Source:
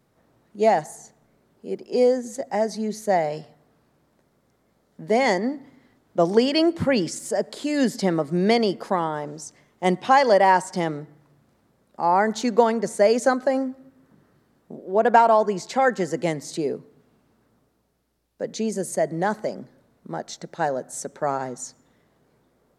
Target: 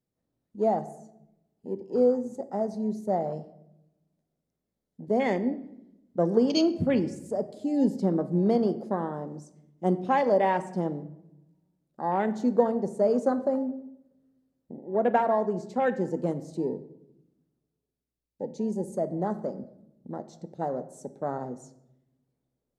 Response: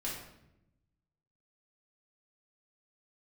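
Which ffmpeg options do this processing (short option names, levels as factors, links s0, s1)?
-filter_complex "[0:a]equalizer=f=1300:t=o:w=2.2:g=-9.5,afwtdn=0.0224,asplit=2[s0][s1];[1:a]atrim=start_sample=2205[s2];[s1][s2]afir=irnorm=-1:irlink=0,volume=0.282[s3];[s0][s3]amix=inputs=2:normalize=0,volume=0.708"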